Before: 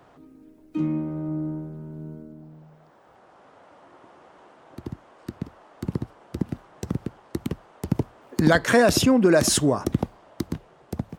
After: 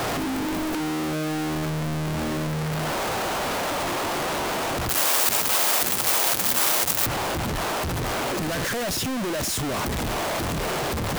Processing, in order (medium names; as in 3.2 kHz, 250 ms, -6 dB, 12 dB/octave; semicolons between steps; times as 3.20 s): one-bit comparator; 4.89–7.06 s: RIAA curve recording